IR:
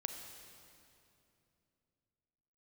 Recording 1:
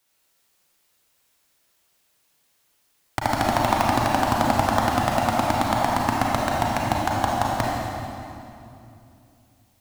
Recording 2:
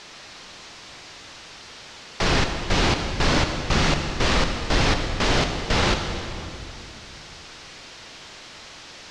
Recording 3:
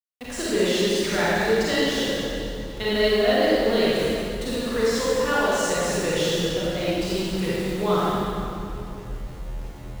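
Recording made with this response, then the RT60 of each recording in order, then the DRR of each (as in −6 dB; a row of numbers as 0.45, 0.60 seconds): 2; 2.8, 2.8, 2.8 seconds; −3.5, 5.0, −9.0 decibels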